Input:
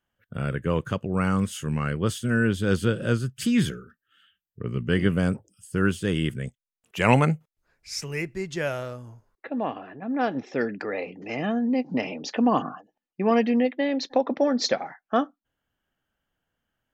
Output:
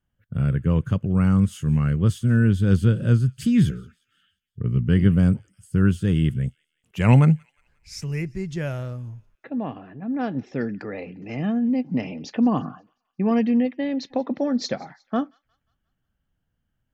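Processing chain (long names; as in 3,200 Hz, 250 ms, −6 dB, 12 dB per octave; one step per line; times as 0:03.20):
bass and treble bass +15 dB, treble 0 dB
on a send: delay with a high-pass on its return 178 ms, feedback 44%, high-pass 2,000 Hz, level −23.5 dB
on the sum: level −5 dB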